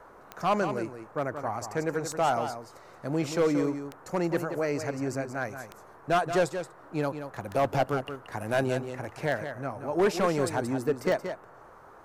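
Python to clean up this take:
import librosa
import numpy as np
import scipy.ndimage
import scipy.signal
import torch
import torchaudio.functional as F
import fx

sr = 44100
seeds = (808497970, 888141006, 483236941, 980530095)

y = fx.fix_declick_ar(x, sr, threshold=10.0)
y = fx.noise_reduce(y, sr, print_start_s=11.45, print_end_s=11.95, reduce_db=22.0)
y = fx.fix_echo_inverse(y, sr, delay_ms=178, level_db=-9.0)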